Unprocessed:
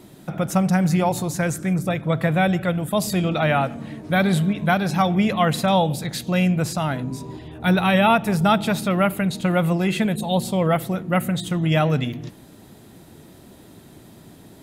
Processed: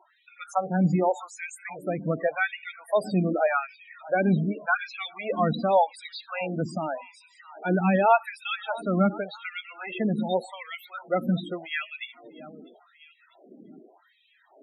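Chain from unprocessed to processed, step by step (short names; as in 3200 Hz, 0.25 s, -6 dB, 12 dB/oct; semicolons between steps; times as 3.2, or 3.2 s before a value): thinning echo 0.645 s, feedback 49%, high-pass 630 Hz, level -16.5 dB; LFO high-pass sine 0.86 Hz 210–2600 Hz; loudest bins only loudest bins 16; gain -5.5 dB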